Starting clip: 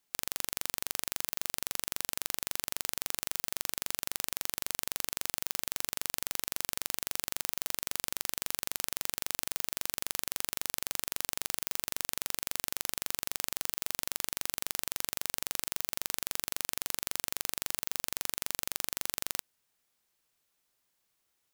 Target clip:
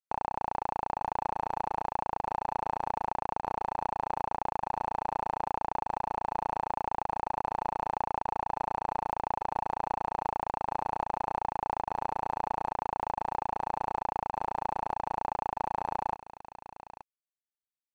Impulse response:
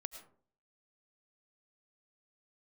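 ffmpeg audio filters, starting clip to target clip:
-af "atempo=1.2,lowpass=frequency=820:width_type=q:width=7.8,asetrate=46722,aresample=44100,atempo=0.943874,aecho=1:1:876:0.211,aeval=exprs='sgn(val(0))*max(abs(val(0))-0.00119,0)':channel_layout=same,volume=6.5dB"

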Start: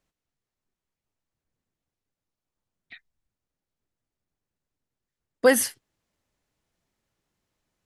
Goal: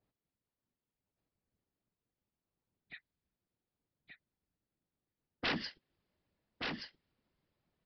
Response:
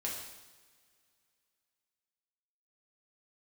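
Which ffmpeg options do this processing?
-af "highpass=59,afftfilt=real='hypot(re,im)*cos(2*PI*random(0))':imag='hypot(re,im)*sin(2*PI*random(1))':win_size=512:overlap=0.75,acompressor=threshold=-40dB:ratio=1.5,tiltshelf=frequency=770:gain=4,aresample=11025,aeval=exprs='0.0237*(abs(mod(val(0)/0.0237+3,4)-2)-1)':channel_layout=same,aresample=44100,aecho=1:1:1176:0.596,adynamicequalizer=threshold=0.00126:dfrequency=1500:dqfactor=0.7:tfrequency=1500:tqfactor=0.7:attack=5:release=100:ratio=0.375:range=3.5:mode=boostabove:tftype=highshelf,volume=1.5dB"

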